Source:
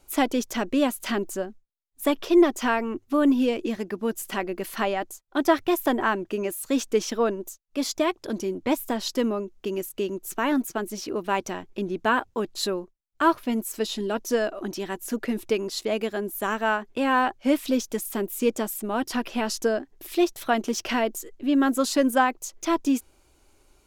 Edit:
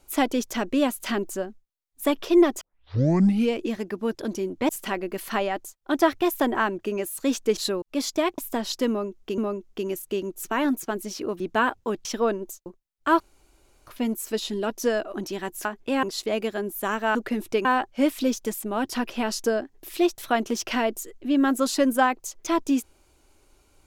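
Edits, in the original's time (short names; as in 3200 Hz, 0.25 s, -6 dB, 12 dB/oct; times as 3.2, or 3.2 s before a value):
2.61 tape start 0.90 s
7.03–7.64 swap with 12.55–12.8
8.2–8.74 move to 4.15
9.25–9.74 loop, 2 plays
11.27–11.9 cut
13.34 insert room tone 0.67 s
15.12–15.62 swap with 16.74–17.12
18.01–18.72 cut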